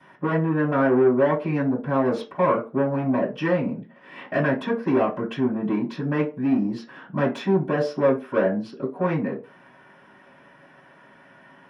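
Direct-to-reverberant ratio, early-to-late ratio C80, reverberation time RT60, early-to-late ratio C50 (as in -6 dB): -13.5 dB, 17.5 dB, not exponential, 12.0 dB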